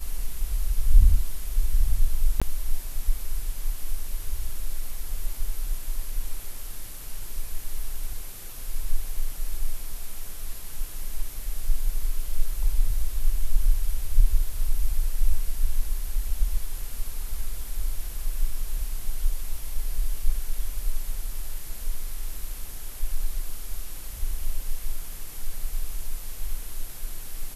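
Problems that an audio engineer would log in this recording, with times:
2.40–2.42 s: dropout 16 ms

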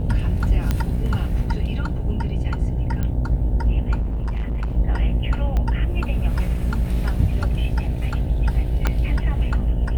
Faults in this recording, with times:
buzz 60 Hz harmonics 15 -25 dBFS
0.71 s: pop -8 dBFS
3.03 s: pop -14 dBFS
4.00–4.76 s: clipped -20.5 dBFS
5.57 s: pop -13 dBFS
8.87 s: pop -6 dBFS

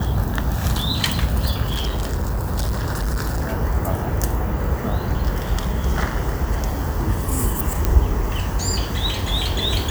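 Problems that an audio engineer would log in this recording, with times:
1.68–3.45 s: clipped -18 dBFS
7.85 s: pop

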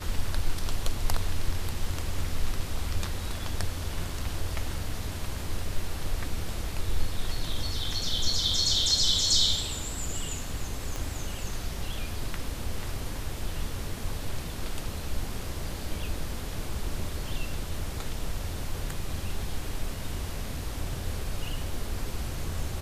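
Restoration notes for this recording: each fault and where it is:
10.96 s: pop -19 dBFS

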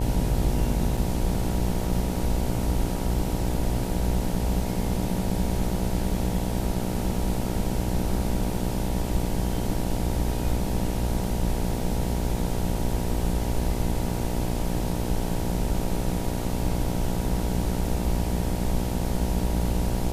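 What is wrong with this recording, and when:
buzz 60 Hz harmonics 16 -29 dBFS
0.97 s: dropout 4.5 ms

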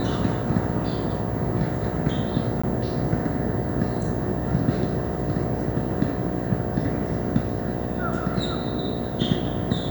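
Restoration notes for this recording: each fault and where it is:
buzz 60 Hz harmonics 12 -30 dBFS
2.62–2.63 s: dropout 15 ms

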